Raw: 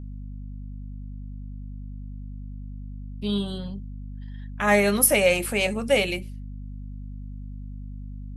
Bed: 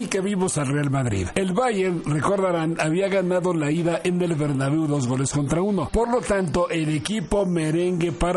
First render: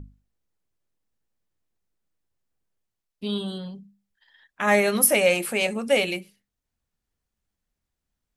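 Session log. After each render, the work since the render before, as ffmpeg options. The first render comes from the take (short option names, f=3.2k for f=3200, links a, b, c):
-af "bandreject=f=50:t=h:w=6,bandreject=f=100:t=h:w=6,bandreject=f=150:t=h:w=6,bandreject=f=200:t=h:w=6,bandreject=f=250:t=h:w=6,bandreject=f=300:t=h:w=6"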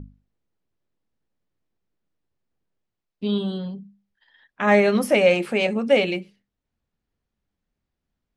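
-af "lowpass=4.5k,equalizer=f=250:w=0.41:g=5.5"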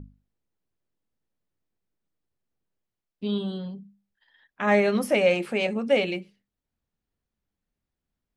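-af "volume=-4dB"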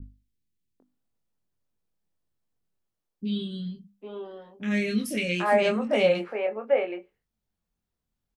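-filter_complex "[0:a]asplit=2[a][b];[b]adelay=23,volume=-6dB[c];[a][c]amix=inputs=2:normalize=0,acrossover=split=360|2000[d][e][f];[f]adelay=30[g];[e]adelay=800[h];[d][h][g]amix=inputs=3:normalize=0"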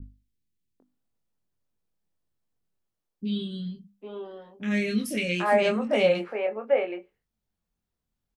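-af anull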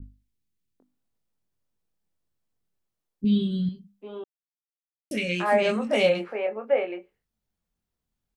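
-filter_complex "[0:a]asettb=1/sr,asplit=3[a][b][c];[a]atrim=end=3.244[d];[b]atrim=start=3.24:end=3.69,asetpts=PTS-STARTPTS,afade=t=in:d=0.004:c=qsin,afade=t=out:st=0.446:d=0.004:c=qsin,lowshelf=f=390:g=10[e];[c]atrim=start=3.686[f];[d][e]acrossfade=d=0.004:c1=hsin:c2=qsin[g];[g][f]acrossfade=d=0.004:c1=qsin:c2=hsin,asettb=1/sr,asplit=3[h][i][j];[h]atrim=end=5.694[k];[i]atrim=start=5.69:end=6.1,asetpts=PTS-STARTPTS,afade=t=in:d=0.004:c=qsin,afade=t=out:st=0.406:d=0.004:c=qsin,highshelf=f=3.9k:g=8.5[l];[j]atrim=start=6.096[m];[k][l]acrossfade=d=0.004:c1=hsin:c2=qsin[n];[n][m]acrossfade=d=0.004:c1=qsin:c2=hsin,asplit=3[o][p][q];[o]atrim=end=4.24,asetpts=PTS-STARTPTS,afade=t=out:st=4.236:d=0.004:c=hsin[r];[p]atrim=start=4.24:end=5.11,asetpts=PTS-STARTPTS,volume=0[s];[q]atrim=start=5.11,asetpts=PTS-STARTPTS,afade=t=in:d=0.004:c=hsin[t];[r][s][t]concat=n=3:v=0:a=1"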